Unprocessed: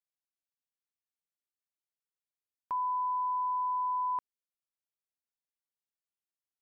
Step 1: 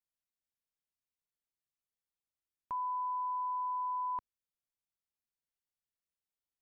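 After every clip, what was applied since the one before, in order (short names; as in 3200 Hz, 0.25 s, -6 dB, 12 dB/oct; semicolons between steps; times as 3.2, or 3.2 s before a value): low shelf 170 Hz +11 dB; gain -4.5 dB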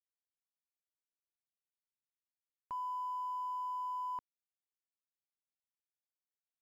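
crossover distortion -60 dBFS; gain -3 dB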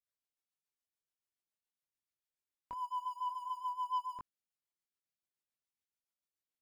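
chorus voices 2, 0.46 Hz, delay 21 ms, depth 2.7 ms; rotary speaker horn 7 Hz; sample leveller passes 1; gain +5.5 dB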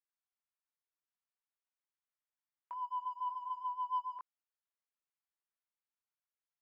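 ladder band-pass 1300 Hz, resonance 20%; gain +10 dB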